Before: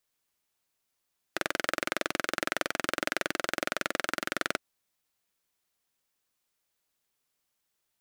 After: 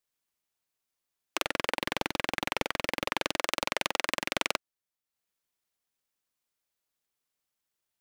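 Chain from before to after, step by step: transient shaper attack +9 dB, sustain -6 dB; 1.42–3.23 s: overload inside the chain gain 8.5 dB; loudspeaker Doppler distortion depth 0.75 ms; trim -5.5 dB

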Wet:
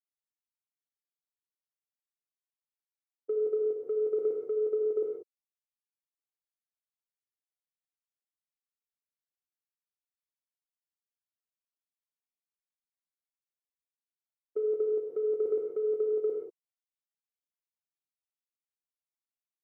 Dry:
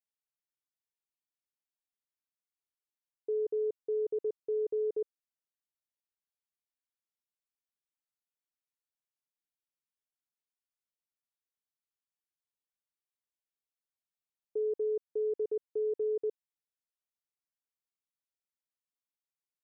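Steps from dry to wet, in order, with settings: high-pass 200 Hz 6 dB/octave; gate -33 dBFS, range -35 dB; compressor with a negative ratio -40 dBFS, ratio -0.5; gated-style reverb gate 210 ms flat, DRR -2 dB; trim +9 dB

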